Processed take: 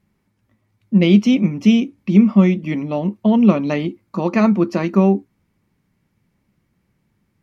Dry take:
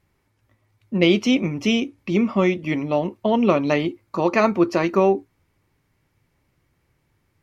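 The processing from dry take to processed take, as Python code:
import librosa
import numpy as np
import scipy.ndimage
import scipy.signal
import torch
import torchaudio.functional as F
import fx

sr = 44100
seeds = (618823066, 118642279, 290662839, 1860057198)

y = fx.peak_eq(x, sr, hz=200.0, db=15.0, octaves=0.58)
y = y * 10.0 ** (-2.5 / 20.0)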